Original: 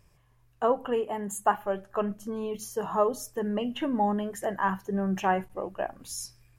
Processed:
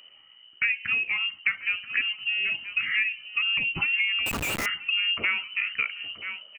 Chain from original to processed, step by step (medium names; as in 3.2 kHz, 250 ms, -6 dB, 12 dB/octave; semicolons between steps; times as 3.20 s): on a send: delay 981 ms -18.5 dB; on the sum: compression 5:1, threshold -32 dBFS, peak gain reduction 13.5 dB; frequency inversion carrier 3 kHz; 4.26–4.66 s: Schmitt trigger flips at -40.5 dBFS; bass shelf 65 Hz -9.5 dB; trim +8.5 dB